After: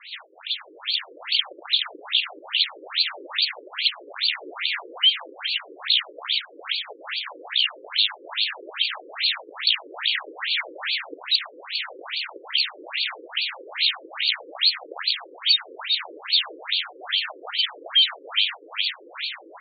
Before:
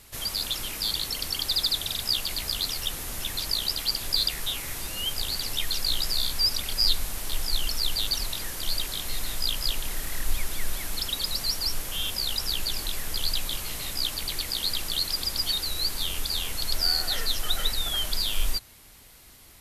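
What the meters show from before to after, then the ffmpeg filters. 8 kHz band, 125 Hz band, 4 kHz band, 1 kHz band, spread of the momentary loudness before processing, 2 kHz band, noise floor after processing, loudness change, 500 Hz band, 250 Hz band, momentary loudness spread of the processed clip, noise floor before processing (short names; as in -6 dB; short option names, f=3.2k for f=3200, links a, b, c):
under -40 dB, under -40 dB, +5.0 dB, +4.0 dB, 7 LU, +10.0 dB, -48 dBFS, +3.5 dB, +3.0 dB, -5.0 dB, 9 LU, -51 dBFS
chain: -filter_complex "[0:a]highpass=f=210:p=1,aecho=1:1:370|740|1110|1480:0.422|0.131|0.0405|0.0126,asplit=2[a][b];[b]aeval=exprs='0.251*sin(PI/2*2*val(0)/0.251)':c=same,volume=-6.5dB[c];[a][c]amix=inputs=2:normalize=0,acompressor=threshold=-33dB:ratio=8,crystalizer=i=8.5:c=0,aresample=11025,asoftclip=type=tanh:threshold=-19.5dB,aresample=44100,adynamicequalizer=threshold=0.0112:dfrequency=3800:dqfactor=4.7:tfrequency=3800:tqfactor=4.7:attack=5:release=100:ratio=0.375:range=2:mode=cutabove:tftype=bell,dynaudnorm=f=200:g=9:m=11.5dB,afftfilt=real='re*between(b*sr/1024,380*pow(3300/380,0.5+0.5*sin(2*PI*2.4*pts/sr))/1.41,380*pow(3300/380,0.5+0.5*sin(2*PI*2.4*pts/sr))*1.41)':imag='im*between(b*sr/1024,380*pow(3300/380,0.5+0.5*sin(2*PI*2.4*pts/sr))/1.41,380*pow(3300/380,0.5+0.5*sin(2*PI*2.4*pts/sr))*1.41)':win_size=1024:overlap=0.75"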